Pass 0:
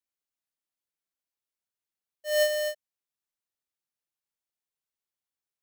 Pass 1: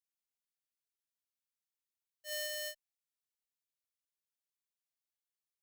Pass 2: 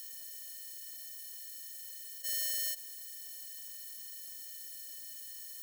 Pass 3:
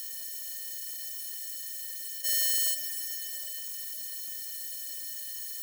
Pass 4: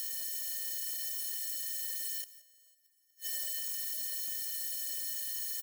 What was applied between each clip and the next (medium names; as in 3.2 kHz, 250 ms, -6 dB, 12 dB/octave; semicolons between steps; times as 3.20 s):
amplifier tone stack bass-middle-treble 5-5-5; peak limiter -28.5 dBFS, peak gain reduction 6 dB; trim +2 dB
spectral levelling over time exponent 0.2; differentiator; trim +5.5 dB
reverberation RT60 5.0 s, pre-delay 112 ms, DRR 7.5 dB; trim +7.5 dB
inverted gate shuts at -25 dBFS, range -38 dB; delay 174 ms -17.5 dB; trim +1 dB